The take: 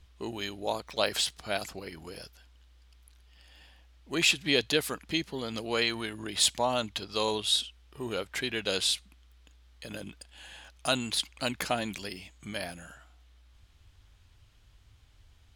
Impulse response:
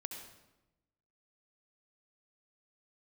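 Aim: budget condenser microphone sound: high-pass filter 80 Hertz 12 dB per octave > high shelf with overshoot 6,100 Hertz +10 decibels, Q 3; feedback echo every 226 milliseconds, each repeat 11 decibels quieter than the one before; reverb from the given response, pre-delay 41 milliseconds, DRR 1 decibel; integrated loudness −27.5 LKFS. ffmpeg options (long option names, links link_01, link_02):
-filter_complex "[0:a]aecho=1:1:226|452|678:0.282|0.0789|0.0221,asplit=2[link_01][link_02];[1:a]atrim=start_sample=2205,adelay=41[link_03];[link_02][link_03]afir=irnorm=-1:irlink=0,volume=1dB[link_04];[link_01][link_04]amix=inputs=2:normalize=0,highpass=80,highshelf=frequency=6100:width_type=q:width=3:gain=10,volume=-5.5dB"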